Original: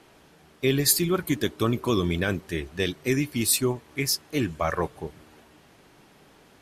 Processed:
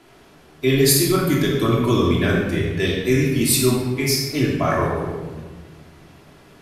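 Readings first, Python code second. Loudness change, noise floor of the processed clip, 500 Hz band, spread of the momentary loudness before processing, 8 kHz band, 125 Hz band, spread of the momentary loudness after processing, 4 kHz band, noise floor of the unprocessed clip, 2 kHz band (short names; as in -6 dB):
+6.5 dB, -49 dBFS, +7.5 dB, 9 LU, +4.0 dB, +9.0 dB, 9 LU, +5.5 dB, -56 dBFS, +6.0 dB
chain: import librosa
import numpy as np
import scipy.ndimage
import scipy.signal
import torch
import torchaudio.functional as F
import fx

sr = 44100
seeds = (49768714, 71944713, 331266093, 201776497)

y = fx.room_shoebox(x, sr, seeds[0], volume_m3=1100.0, walls='mixed', distance_m=3.0)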